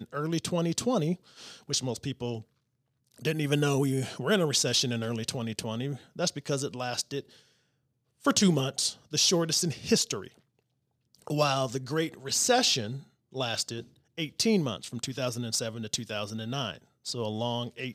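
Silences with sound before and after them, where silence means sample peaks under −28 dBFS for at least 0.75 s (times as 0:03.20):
0:02.36–0:03.25
0:07.19–0:08.26
0:10.18–0:11.27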